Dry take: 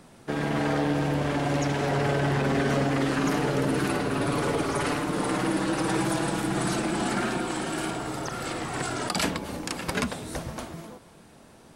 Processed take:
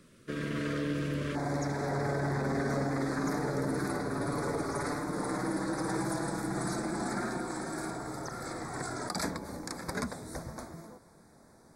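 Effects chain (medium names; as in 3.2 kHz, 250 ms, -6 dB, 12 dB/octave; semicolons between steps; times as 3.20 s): Butterworth band-stop 800 Hz, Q 1.5, from 1.34 s 2.9 kHz; trim -6.5 dB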